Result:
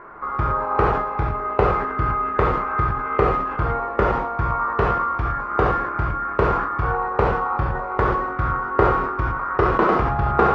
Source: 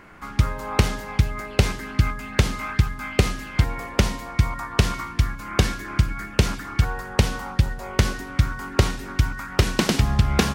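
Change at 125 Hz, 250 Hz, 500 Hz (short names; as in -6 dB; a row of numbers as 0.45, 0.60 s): -4.0, -0.5, +8.0 dB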